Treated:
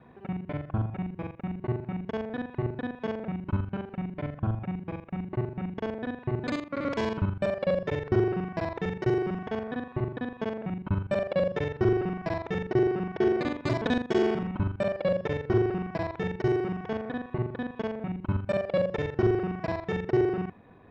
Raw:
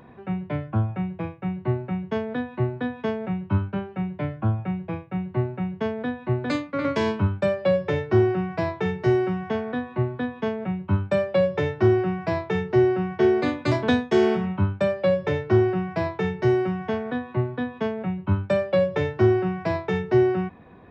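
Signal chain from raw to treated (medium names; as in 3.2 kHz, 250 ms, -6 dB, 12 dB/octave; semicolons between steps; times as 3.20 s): time reversed locally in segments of 41 ms; trim -5 dB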